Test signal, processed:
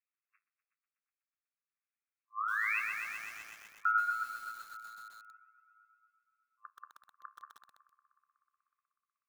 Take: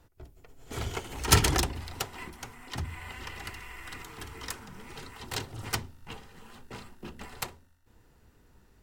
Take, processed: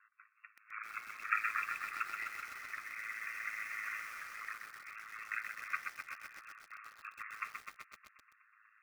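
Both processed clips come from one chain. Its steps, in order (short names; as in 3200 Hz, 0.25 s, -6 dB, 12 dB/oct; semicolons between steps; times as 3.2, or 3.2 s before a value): FFT band-pass 1100–2700 Hz; in parallel at 0 dB: compressor 5:1, threshold -49 dBFS; on the sum: loudest bins only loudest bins 32; random-step tremolo; flange 0.48 Hz, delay 9.3 ms, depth 5.5 ms, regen -66%; ring modulator 54 Hz; on a send: multi-head echo 0.123 s, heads all three, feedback 60%, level -20 dB; on the sum: lo-fi delay 0.128 s, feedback 80%, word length 10-bit, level -5 dB; gain +9 dB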